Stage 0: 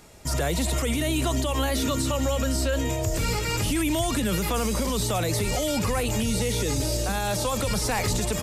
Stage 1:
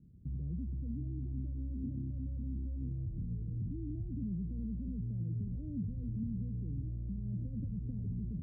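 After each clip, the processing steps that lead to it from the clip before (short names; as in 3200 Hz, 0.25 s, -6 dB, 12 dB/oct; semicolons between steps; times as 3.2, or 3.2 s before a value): inverse Chebyshev low-pass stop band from 920 Hz, stop band 70 dB; limiter -29 dBFS, peak gain reduction 11 dB; HPF 120 Hz 6 dB/oct; gain +1 dB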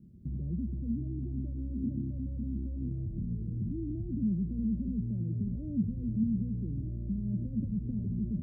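small resonant body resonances 220/350/580 Hz, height 9 dB; gain +1.5 dB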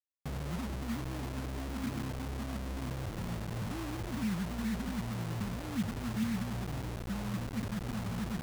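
bit-crush 6-bit; gain -4 dB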